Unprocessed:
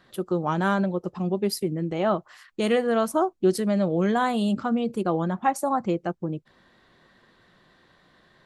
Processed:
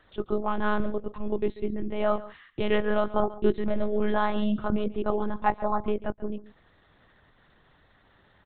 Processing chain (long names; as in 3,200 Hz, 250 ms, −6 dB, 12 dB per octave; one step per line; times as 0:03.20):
one-pitch LPC vocoder at 8 kHz 210 Hz
single-tap delay 139 ms −17.5 dB
level −1.5 dB